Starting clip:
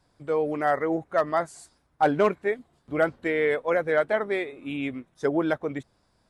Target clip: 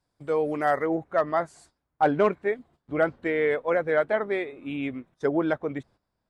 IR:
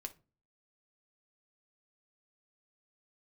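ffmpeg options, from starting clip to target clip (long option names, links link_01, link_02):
-af "agate=range=-12dB:threshold=-52dB:ratio=16:detection=peak,asetnsamples=nb_out_samples=441:pad=0,asendcmd='0.86 highshelf g -11',highshelf=frequency=5200:gain=3"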